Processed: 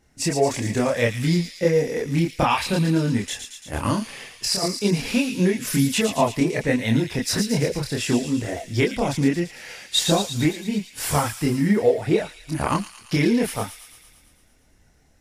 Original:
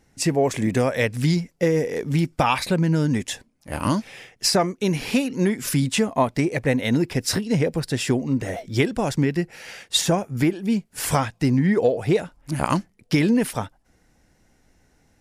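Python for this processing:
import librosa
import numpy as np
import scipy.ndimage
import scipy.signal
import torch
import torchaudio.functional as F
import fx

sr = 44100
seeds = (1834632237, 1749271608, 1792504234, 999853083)

y = fx.over_compress(x, sr, threshold_db=-22.0, ratio=-0.5, at=(3.99, 4.76))
y = fx.chorus_voices(y, sr, voices=4, hz=0.63, base_ms=27, depth_ms=2.4, mix_pct=50)
y = fx.echo_wet_highpass(y, sr, ms=113, feedback_pct=66, hz=3100.0, wet_db=-5)
y = y * librosa.db_to_amplitude(3.0)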